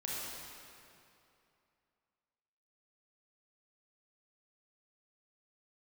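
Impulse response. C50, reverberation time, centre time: -3.5 dB, 2.7 s, 168 ms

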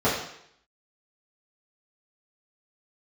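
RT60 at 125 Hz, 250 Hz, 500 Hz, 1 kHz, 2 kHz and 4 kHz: 0.65 s, 0.65 s, 0.70 s, 0.70 s, 0.75 s, 0.70 s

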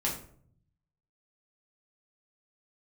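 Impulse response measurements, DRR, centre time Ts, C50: -4.0 dB, 28 ms, 7.0 dB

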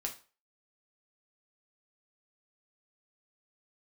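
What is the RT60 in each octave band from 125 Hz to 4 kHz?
0.30 s, 0.30 s, 0.35 s, 0.35 s, 0.35 s, 0.30 s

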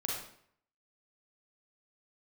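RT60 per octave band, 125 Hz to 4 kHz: 0.65 s, 0.65 s, 0.65 s, 0.60 s, 0.60 s, 0.50 s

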